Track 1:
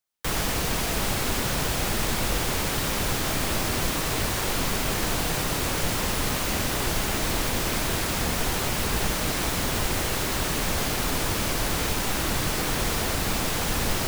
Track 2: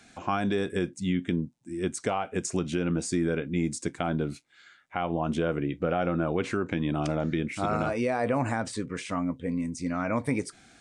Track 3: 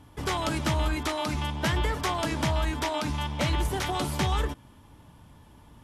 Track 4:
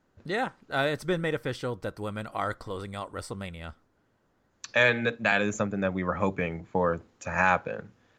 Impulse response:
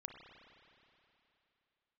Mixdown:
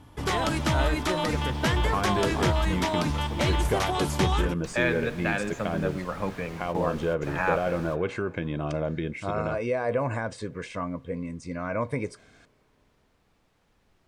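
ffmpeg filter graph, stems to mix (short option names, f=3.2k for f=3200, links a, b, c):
-filter_complex "[0:a]volume=-17.5dB,asplit=2[a][b];[b]volume=-21.5dB[c];[1:a]aecho=1:1:1.9:0.47,acompressor=mode=upward:threshold=-45dB:ratio=2.5,adelay=1650,volume=-1dB,asplit=2[d][e];[e]volume=-21.5dB[f];[2:a]aemphasis=mode=production:type=cd,volume=2dB[g];[3:a]volume=-6dB,asplit=3[h][i][j];[i]volume=-3.5dB[k];[j]apad=whole_len=620534[l];[a][l]sidechaingate=range=-33dB:threshold=-55dB:ratio=16:detection=peak[m];[4:a]atrim=start_sample=2205[n];[c][f][k]amix=inputs=3:normalize=0[o];[o][n]afir=irnorm=-1:irlink=0[p];[m][d][g][h][p]amix=inputs=5:normalize=0,aemphasis=mode=reproduction:type=50kf"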